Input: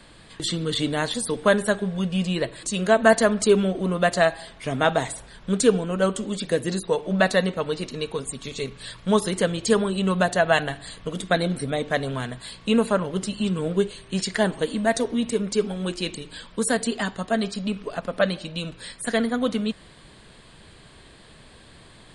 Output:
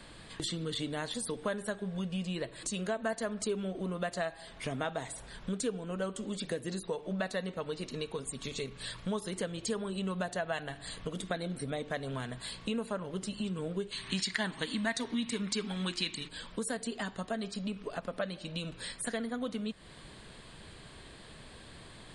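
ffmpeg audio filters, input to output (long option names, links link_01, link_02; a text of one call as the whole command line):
ffmpeg -i in.wav -filter_complex "[0:a]asplit=3[link_01][link_02][link_03];[link_01]afade=type=out:start_time=13.91:duration=0.02[link_04];[link_02]equalizer=frequency=125:width_type=o:width=1:gain=4,equalizer=frequency=250:width_type=o:width=1:gain=7,equalizer=frequency=500:width_type=o:width=1:gain=-5,equalizer=frequency=1000:width_type=o:width=1:gain=8,equalizer=frequency=2000:width_type=o:width=1:gain=10,equalizer=frequency=4000:width_type=o:width=1:gain=11,equalizer=frequency=8000:width_type=o:width=1:gain=6,afade=type=in:start_time=13.91:duration=0.02,afade=type=out:start_time=16.27:duration=0.02[link_05];[link_03]afade=type=in:start_time=16.27:duration=0.02[link_06];[link_04][link_05][link_06]amix=inputs=3:normalize=0,acompressor=threshold=-34dB:ratio=3,volume=-2dB" out.wav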